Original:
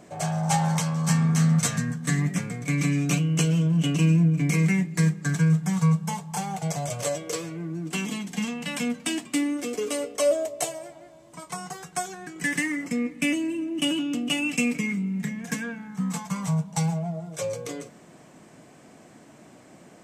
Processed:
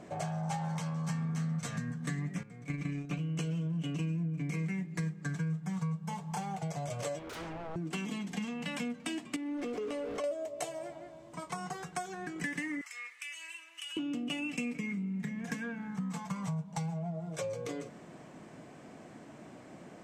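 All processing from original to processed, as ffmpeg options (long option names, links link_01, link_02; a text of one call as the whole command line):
ffmpeg -i in.wav -filter_complex "[0:a]asettb=1/sr,asplit=3[link_01][link_02][link_03];[link_01]atrim=end=2.434[link_04];[link_02]atrim=start=2.43:end=3.19,asetpts=PTS-STARTPTS,afade=type=in:duration=0.004:curve=qsin,afade=type=out:start_time=0.756:duration=0.004:curve=qsin,agate=range=-13dB:threshold=-24dB:ratio=16:release=100:detection=peak,acrossover=split=3700[link_05][link_06];[link_06]acompressor=threshold=-43dB:ratio=4:attack=1:release=60[link_07];[link_05][link_07]amix=inputs=2:normalize=0[link_08];[link_03]atrim=start=3.186[link_09];[link_04][link_08]acrossfade=duration=0.004:curve1=hsin:curve2=qsin[link_10];[link_10][link_09]acrossfade=duration=0.004:curve1=qsin:curve2=hsin,asettb=1/sr,asplit=3[link_11][link_12][link_13];[link_11]atrim=end=7.194[link_14];[link_12]atrim=start=7.19:end=7.76,asetpts=PTS-STARTPTS,afade=type=in:duration=0.004:curve=qsin,afade=type=out:start_time=0.566:duration=0.004:curve=qsin,aemphasis=mode=reproduction:type=50kf,aeval=exprs='0.0168*(abs(mod(val(0)/0.0168+3,4)-2)-1)':channel_layout=same[link_15];[link_13]atrim=start=7.756[link_16];[link_14][link_15]acrossfade=duration=0.004:curve1=hsin:curve2=qsin[link_17];[link_17][link_16]acrossfade=duration=0.004:curve1=qsin:curve2=hsin,asettb=1/sr,asplit=3[link_18][link_19][link_20];[link_18]atrim=end=9.364[link_21];[link_19]atrim=start=9.36:end=10.24,asetpts=PTS-STARTPTS,afade=type=in:duration=0.004:curve=qsin,afade=type=out:start_time=0.876:duration=0.004:curve=qsin,aeval=exprs='val(0)+0.5*0.02*sgn(val(0))':channel_layout=same,lowpass=frequency=2500:poles=1,acompressor=threshold=-28dB:ratio=6:attack=3.2:release=140:knee=1:detection=peak[link_22];[link_20]atrim=start=10.236[link_23];[link_21][link_22]acrossfade=duration=0.004:curve1=hsin:curve2=qsin[link_24];[link_24][link_23]acrossfade=duration=0.004:curve1=qsin:curve2=hsin,asettb=1/sr,asplit=3[link_25][link_26][link_27];[link_25]atrim=end=12.814[link_28];[link_26]atrim=start=12.81:end=13.97,asetpts=PTS-STARTPTS,afade=type=in:duration=0.004:curve=qsin,afade=type=out:start_time=1.156:duration=0.004:curve=qsin,highpass=frequency=1200:width=0.5412,highpass=frequency=1200:width=1.3066,highshelf=frequency=4200:gain=7,acompressor=threshold=-37dB:ratio=6:attack=3.2:release=140:knee=1:detection=peak[link_29];[link_27]atrim=start=13.966[link_30];[link_28][link_29]acrossfade=duration=0.004:curve1=hsin:curve2=qsin[link_31];[link_31][link_30]acrossfade=duration=0.004:curve1=qsin:curve2=hsin,lowpass=frequency=3300:poles=1,acompressor=threshold=-35dB:ratio=4" out.wav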